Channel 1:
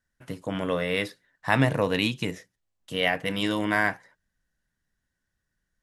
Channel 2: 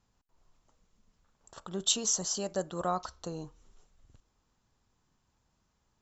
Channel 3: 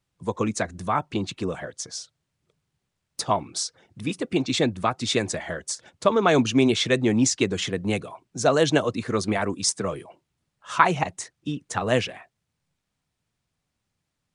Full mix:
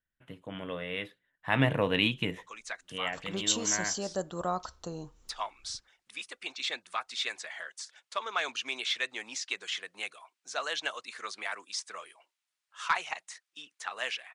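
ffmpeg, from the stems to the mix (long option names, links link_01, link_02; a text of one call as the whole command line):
ffmpeg -i stem1.wav -i stem2.wav -i stem3.wav -filter_complex "[0:a]highshelf=frequency=4000:width_type=q:width=3:gain=-7.5,volume=-3.5dB,afade=type=in:start_time=1.4:duration=0.25:silence=0.421697,afade=type=out:start_time=2.65:duration=0.32:silence=0.354813,asplit=2[link_01][link_02];[1:a]agate=range=-33dB:threshold=-60dB:ratio=3:detection=peak,adelay=1600,volume=-0.5dB[link_03];[2:a]highpass=1400,acrossover=split=4700[link_04][link_05];[link_05]acompressor=threshold=-43dB:ratio=4:attack=1:release=60[link_06];[link_04][link_06]amix=inputs=2:normalize=0,asoftclip=type=tanh:threshold=-12.5dB,adelay=2100,volume=-3.5dB[link_07];[link_02]apad=whole_len=725124[link_08];[link_07][link_08]sidechaincompress=threshold=-36dB:ratio=8:attack=30:release=574[link_09];[link_01][link_03][link_09]amix=inputs=3:normalize=0" out.wav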